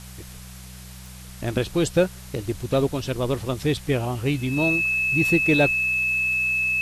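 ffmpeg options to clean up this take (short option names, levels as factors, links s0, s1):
-af "adeclick=t=4,bandreject=f=62.5:t=h:w=4,bandreject=f=125:t=h:w=4,bandreject=f=187.5:t=h:w=4,bandreject=f=2600:w=30,afwtdn=0.0063"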